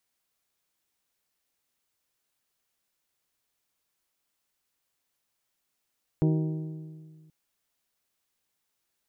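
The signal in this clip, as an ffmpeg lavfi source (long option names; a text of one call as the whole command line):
ffmpeg -f lavfi -i "aevalsrc='0.1*pow(10,-3*t/1.92)*sin(2*PI*157*t)+0.0562*pow(10,-3*t/1.56)*sin(2*PI*314*t)+0.0316*pow(10,-3*t/1.477)*sin(2*PI*376.8*t)+0.0178*pow(10,-3*t/1.381)*sin(2*PI*471*t)+0.01*pow(10,-3*t/1.267)*sin(2*PI*628*t)+0.00562*pow(10,-3*t/1.185)*sin(2*PI*785*t)+0.00316*pow(10,-3*t/1.122)*sin(2*PI*942*t)':duration=1.08:sample_rate=44100" out.wav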